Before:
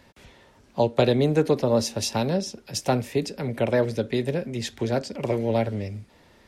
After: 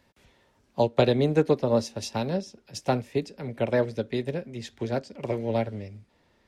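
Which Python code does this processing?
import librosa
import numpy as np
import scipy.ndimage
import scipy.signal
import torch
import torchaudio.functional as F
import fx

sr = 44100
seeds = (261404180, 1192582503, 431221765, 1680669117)

y = fx.high_shelf(x, sr, hz=11000.0, db=fx.steps((0.0, 3.0), (0.87, -10.5)))
y = fx.upward_expand(y, sr, threshold_db=-35.0, expansion=1.5)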